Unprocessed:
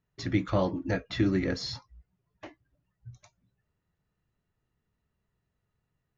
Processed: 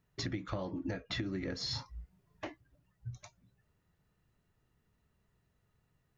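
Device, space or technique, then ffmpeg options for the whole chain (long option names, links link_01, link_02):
serial compression, peaks first: -filter_complex "[0:a]acompressor=threshold=-34dB:ratio=6,acompressor=threshold=-42dB:ratio=2,asettb=1/sr,asplit=3[link_01][link_02][link_03];[link_01]atrim=end=1.674[link_04];[link_02]atrim=start=1.67:end=2.45,asetpts=PTS-STARTPTS,afade=type=in:duration=0.004:curve=qsin,afade=type=out:start_time=0.776:duration=0.004:curve=qsin,asplit=2[link_05][link_06];[link_06]adelay=37,volume=-2dB[link_07];[link_05][link_07]amix=inputs=2:normalize=0,atrim=end_sample=34398[link_08];[link_03]atrim=start=2.446[link_09];[link_04][link_08]acrossfade=duration=0.004:curve1=hsin:curve2=qsin[link_10];[link_10][link_09]acrossfade=duration=0.004:curve1=qsin:curve2=hsin,volume=4.5dB"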